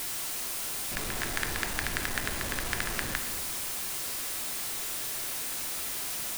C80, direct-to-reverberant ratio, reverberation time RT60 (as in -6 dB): 9.5 dB, 5.0 dB, 1.6 s